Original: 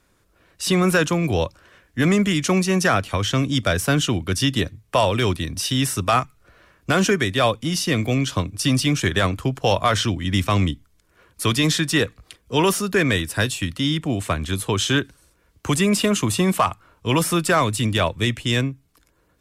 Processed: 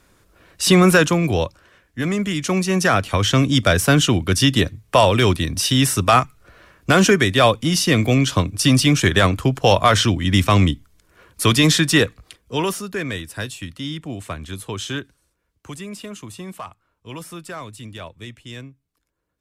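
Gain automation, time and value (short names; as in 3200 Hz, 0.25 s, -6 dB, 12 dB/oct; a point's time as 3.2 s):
0.78 s +6 dB
2.08 s -4.5 dB
3.27 s +4.5 dB
11.95 s +4.5 dB
12.93 s -7 dB
14.91 s -7 dB
15.85 s -15 dB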